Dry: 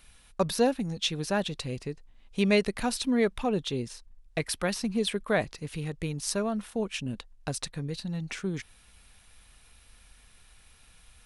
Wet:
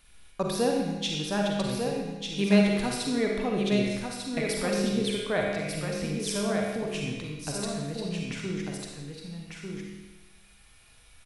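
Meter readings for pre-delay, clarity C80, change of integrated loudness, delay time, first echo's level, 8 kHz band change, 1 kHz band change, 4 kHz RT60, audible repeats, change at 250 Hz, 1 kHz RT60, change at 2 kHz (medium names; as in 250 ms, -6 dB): 39 ms, 0.0 dB, +1.5 dB, 1196 ms, -5.0 dB, +0.5 dB, +0.5 dB, 1.1 s, 1, +3.0 dB, 1.2 s, +1.0 dB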